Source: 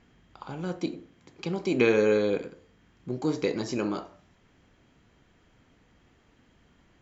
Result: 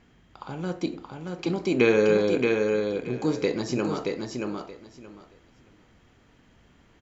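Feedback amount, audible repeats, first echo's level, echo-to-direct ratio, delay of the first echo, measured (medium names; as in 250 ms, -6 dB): 18%, 3, -4.0 dB, -4.0 dB, 626 ms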